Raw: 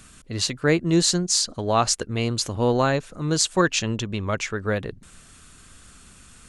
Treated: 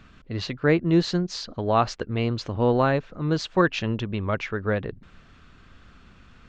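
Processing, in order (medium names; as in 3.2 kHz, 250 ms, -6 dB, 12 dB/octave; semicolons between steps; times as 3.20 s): Gaussian low-pass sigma 2.3 samples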